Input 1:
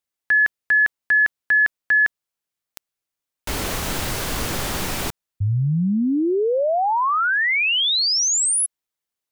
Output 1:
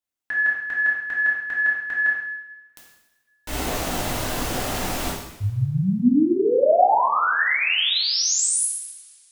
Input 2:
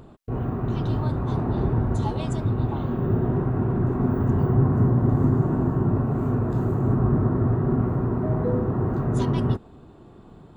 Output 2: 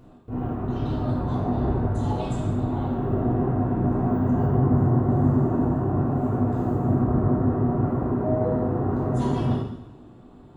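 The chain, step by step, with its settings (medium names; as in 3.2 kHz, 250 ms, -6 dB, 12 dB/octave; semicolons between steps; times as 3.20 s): peaking EQ 250 Hz +5.5 dB 0.32 oct; two-slope reverb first 0.92 s, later 2.7 s, from -24 dB, DRR -5.5 dB; dynamic bell 650 Hz, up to +5 dB, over -28 dBFS, Q 1.3; trim -8.5 dB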